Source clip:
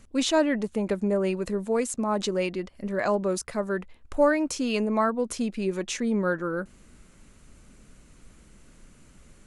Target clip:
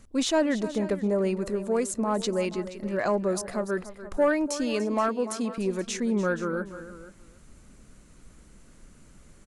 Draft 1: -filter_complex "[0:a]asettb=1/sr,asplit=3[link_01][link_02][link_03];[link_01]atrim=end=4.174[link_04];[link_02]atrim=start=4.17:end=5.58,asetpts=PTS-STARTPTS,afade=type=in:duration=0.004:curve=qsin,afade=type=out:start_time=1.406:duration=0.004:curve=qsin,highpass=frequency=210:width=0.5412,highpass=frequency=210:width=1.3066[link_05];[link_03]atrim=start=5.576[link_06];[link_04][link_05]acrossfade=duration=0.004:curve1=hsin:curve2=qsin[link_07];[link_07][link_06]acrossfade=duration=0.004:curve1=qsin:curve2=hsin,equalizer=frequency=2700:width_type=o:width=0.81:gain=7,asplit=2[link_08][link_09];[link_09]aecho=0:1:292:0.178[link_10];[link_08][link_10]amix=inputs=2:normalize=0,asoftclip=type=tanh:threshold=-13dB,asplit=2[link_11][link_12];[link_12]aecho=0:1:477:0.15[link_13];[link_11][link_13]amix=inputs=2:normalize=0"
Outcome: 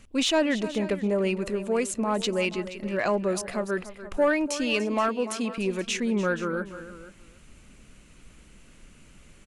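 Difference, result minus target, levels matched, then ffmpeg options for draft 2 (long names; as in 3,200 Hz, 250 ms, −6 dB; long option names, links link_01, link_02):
2,000 Hz band +3.5 dB
-filter_complex "[0:a]asettb=1/sr,asplit=3[link_01][link_02][link_03];[link_01]atrim=end=4.174[link_04];[link_02]atrim=start=4.17:end=5.58,asetpts=PTS-STARTPTS,afade=type=in:duration=0.004:curve=qsin,afade=type=out:start_time=1.406:duration=0.004:curve=qsin,highpass=frequency=210:width=0.5412,highpass=frequency=210:width=1.3066[link_05];[link_03]atrim=start=5.576[link_06];[link_04][link_05]acrossfade=duration=0.004:curve1=hsin:curve2=qsin[link_07];[link_07][link_06]acrossfade=duration=0.004:curve1=qsin:curve2=hsin,equalizer=frequency=2700:width_type=o:width=0.81:gain=-3.5,asplit=2[link_08][link_09];[link_09]aecho=0:1:292:0.178[link_10];[link_08][link_10]amix=inputs=2:normalize=0,asoftclip=type=tanh:threshold=-13dB,asplit=2[link_11][link_12];[link_12]aecho=0:1:477:0.15[link_13];[link_11][link_13]amix=inputs=2:normalize=0"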